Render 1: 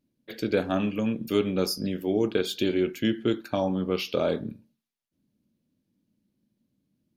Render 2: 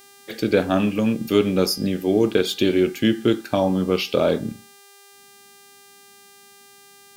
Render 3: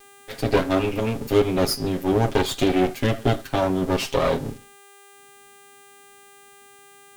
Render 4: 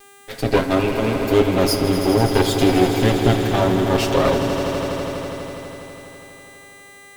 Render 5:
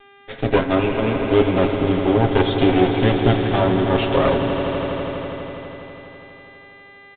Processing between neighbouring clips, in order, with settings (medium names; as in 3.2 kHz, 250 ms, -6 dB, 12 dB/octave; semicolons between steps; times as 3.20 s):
mains buzz 400 Hz, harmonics 39, -56 dBFS -2 dB/octave; trim +6.5 dB
comb filter that takes the minimum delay 7.4 ms
echo with a slow build-up 82 ms, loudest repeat 5, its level -11.5 dB; trim +2.5 dB
resampled via 8 kHz